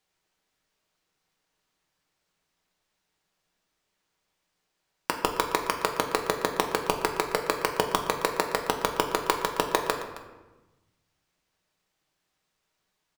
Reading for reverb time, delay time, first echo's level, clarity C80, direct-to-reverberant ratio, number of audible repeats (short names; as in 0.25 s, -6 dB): 1.2 s, 0.267 s, -17.5 dB, 8.5 dB, 2.5 dB, 1